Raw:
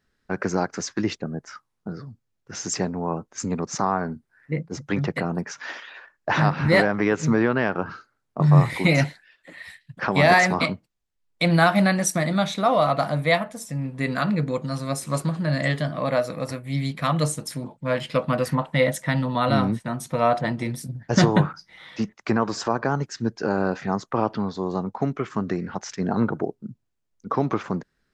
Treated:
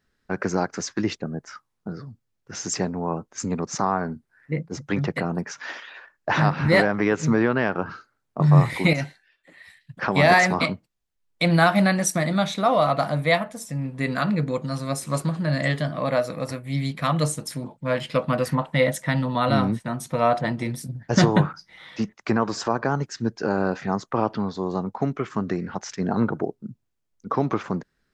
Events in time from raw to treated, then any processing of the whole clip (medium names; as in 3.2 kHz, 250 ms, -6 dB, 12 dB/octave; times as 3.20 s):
8.93–9.77 s: feedback comb 390 Hz, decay 0.38 s